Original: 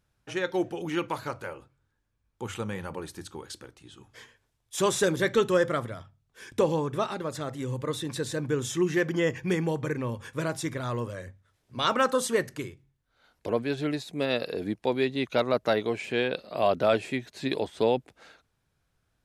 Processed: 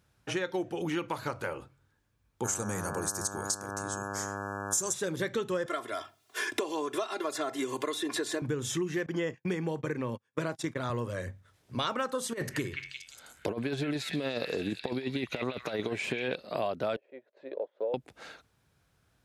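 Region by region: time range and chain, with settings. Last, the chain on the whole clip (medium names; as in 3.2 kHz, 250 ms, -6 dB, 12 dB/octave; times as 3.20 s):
2.43–4.92 s: resonant high shelf 4.6 kHz +13 dB, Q 3 + mains buzz 100 Hz, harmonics 17, -40 dBFS -1 dB/octave
5.66–8.42 s: high-pass 390 Hz + comb 2.9 ms, depth 81% + three bands compressed up and down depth 70%
9.06–10.90 s: gate -36 dBFS, range -40 dB + high-pass 130 Hz + treble shelf 9.4 kHz -8 dB
12.33–16.35 s: compressor with a negative ratio -29 dBFS, ratio -0.5 + repeats whose band climbs or falls 175 ms, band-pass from 2.1 kHz, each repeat 0.7 oct, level -2 dB
16.96–17.94 s: peaking EQ 760 Hz -6 dB 0.73 oct + transient shaper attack -2 dB, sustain -7 dB + ladder band-pass 590 Hz, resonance 75%
whole clip: compression 6:1, threshold -35 dBFS; high-pass 55 Hz; trim +5.5 dB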